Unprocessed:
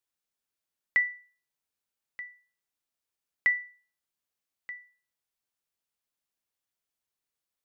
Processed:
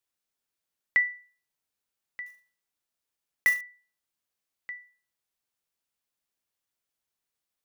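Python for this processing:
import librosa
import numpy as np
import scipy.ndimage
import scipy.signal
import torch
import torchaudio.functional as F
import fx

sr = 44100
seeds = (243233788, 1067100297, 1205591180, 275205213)

y = fx.block_float(x, sr, bits=3, at=(2.26, 3.62))
y = F.gain(torch.from_numpy(y), 1.5).numpy()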